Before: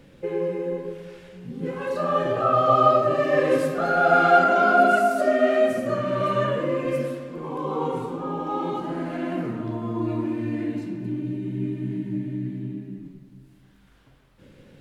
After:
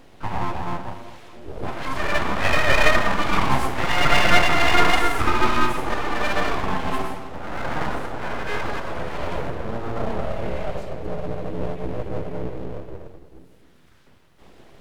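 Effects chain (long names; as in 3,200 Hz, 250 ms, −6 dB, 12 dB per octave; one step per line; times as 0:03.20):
pitch-shifted copies added +7 semitones −13 dB
full-wave rectification
level +3.5 dB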